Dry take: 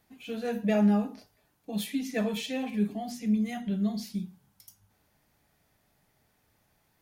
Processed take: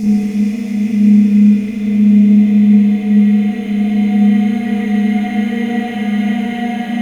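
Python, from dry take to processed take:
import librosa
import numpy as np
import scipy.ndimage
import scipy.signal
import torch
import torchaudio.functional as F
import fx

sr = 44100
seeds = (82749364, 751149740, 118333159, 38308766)

y = fx.dmg_crackle(x, sr, seeds[0], per_s=200.0, level_db=-40.0)
y = fx.paulstretch(y, sr, seeds[1], factor=21.0, window_s=0.5, from_s=3.23)
y = fx.rev_spring(y, sr, rt60_s=2.0, pass_ms=(34, 58), chirp_ms=75, drr_db=-9.0)
y = y * librosa.db_to_amplitude(6.0)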